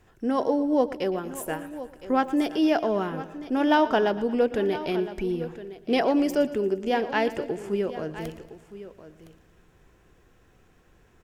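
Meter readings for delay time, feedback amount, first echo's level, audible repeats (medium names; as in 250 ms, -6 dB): 116 ms, no regular repeats, -16.5 dB, 6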